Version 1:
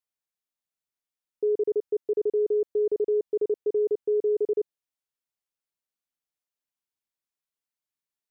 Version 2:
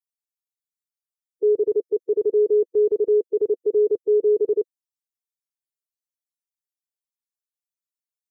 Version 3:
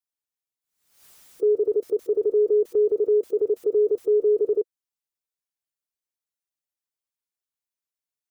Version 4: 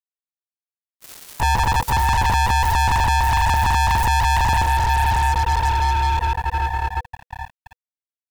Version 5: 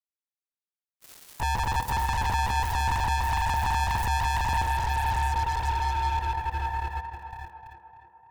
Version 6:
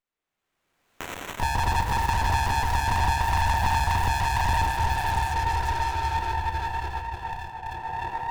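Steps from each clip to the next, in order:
expander on every frequency bin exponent 3; trim +7 dB
dynamic bell 200 Hz, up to -5 dB, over -33 dBFS, Q 0.94; swell ahead of each attack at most 87 dB/s
echo that smears into a reverb 612 ms, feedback 49%, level -9.5 dB; fuzz box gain 47 dB, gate -48 dBFS; ring modulator 490 Hz
tape echo 300 ms, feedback 68%, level -6.5 dB, low-pass 2 kHz; trim -9 dB
recorder AGC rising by 30 dB/s; on a send at -6 dB: reverberation RT60 0.50 s, pre-delay 3 ms; on the sum: sliding maximum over 9 samples; trim +3 dB

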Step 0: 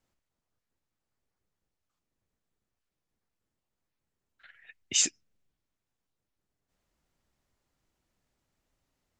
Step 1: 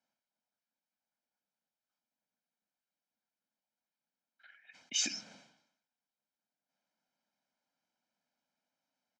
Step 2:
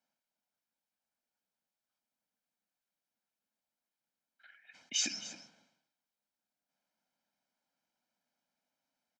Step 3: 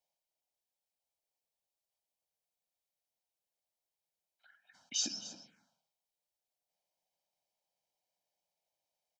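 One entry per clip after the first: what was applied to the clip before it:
Chebyshev band-pass 220–5900 Hz, order 3; comb 1.3 ms, depth 72%; decay stretcher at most 76 dB/s; trim -7 dB
delay 266 ms -14.5 dB
touch-sensitive phaser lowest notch 240 Hz, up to 2.1 kHz, full sweep at -44 dBFS

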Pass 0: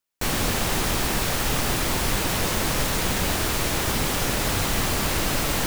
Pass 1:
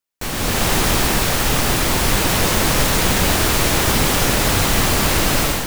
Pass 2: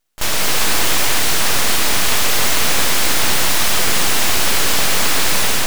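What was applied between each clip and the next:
level rider gain up to 11.5 dB; trim -1.5 dB
pre-echo 33 ms -19.5 dB; overdrive pedal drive 25 dB, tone 4.6 kHz, clips at -3 dBFS; full-wave rectifier

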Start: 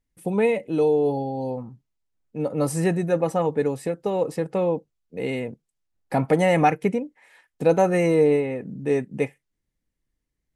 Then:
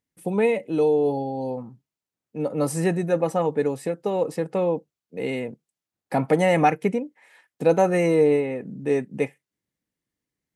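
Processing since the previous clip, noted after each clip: high-pass 130 Hz 12 dB/octave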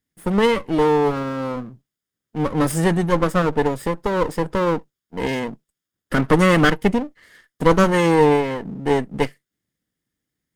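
comb filter that takes the minimum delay 0.58 ms; trim +5.5 dB

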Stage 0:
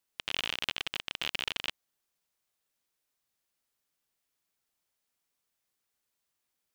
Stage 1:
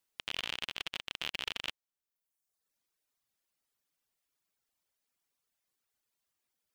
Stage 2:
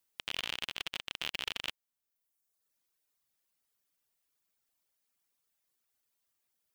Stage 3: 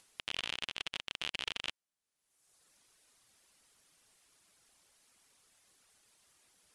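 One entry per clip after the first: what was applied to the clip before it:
reverb removal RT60 1 s; peak limiter -18.5 dBFS, peak gain reduction 8.5 dB
treble shelf 9.9 kHz +6 dB
steep low-pass 11 kHz 48 dB/octave; in parallel at +0.5 dB: upward compressor, threshold -43 dBFS; on the sum: trim -7.5 dB

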